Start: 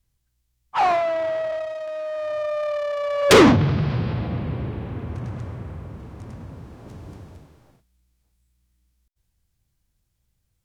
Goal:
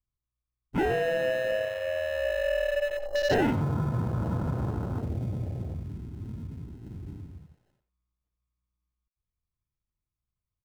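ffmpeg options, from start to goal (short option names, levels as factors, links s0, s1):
-filter_complex "[0:a]lowpass=f=1200:w=0.5412,lowpass=f=1200:w=1.3066,acrusher=samples=38:mix=1:aa=0.000001,acompressor=threshold=0.0562:ratio=4,afwtdn=0.0178,asplit=2[s0][s1];[s1]adelay=90,highpass=300,lowpass=3400,asoftclip=type=hard:threshold=0.0501,volume=0.355[s2];[s0][s2]amix=inputs=2:normalize=0"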